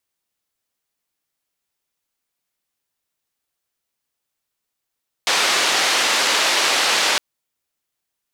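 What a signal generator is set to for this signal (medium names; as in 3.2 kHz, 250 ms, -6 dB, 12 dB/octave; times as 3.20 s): noise band 440–4700 Hz, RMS -18 dBFS 1.91 s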